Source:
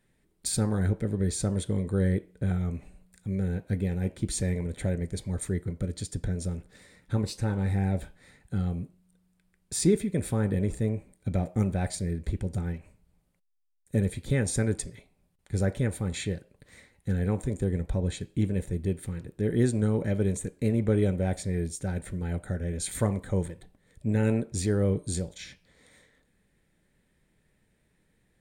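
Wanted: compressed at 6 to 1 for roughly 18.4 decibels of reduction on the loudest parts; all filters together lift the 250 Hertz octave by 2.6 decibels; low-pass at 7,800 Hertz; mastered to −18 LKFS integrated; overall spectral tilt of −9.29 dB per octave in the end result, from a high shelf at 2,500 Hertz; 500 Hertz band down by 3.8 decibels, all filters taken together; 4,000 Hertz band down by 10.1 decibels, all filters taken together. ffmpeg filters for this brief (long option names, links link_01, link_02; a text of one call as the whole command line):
ffmpeg -i in.wav -af "lowpass=7800,equalizer=frequency=250:width_type=o:gain=5,equalizer=frequency=500:width_type=o:gain=-6.5,highshelf=frequency=2500:gain=-6.5,equalizer=frequency=4000:width_type=o:gain=-6,acompressor=threshold=-39dB:ratio=6,volume=25.5dB" out.wav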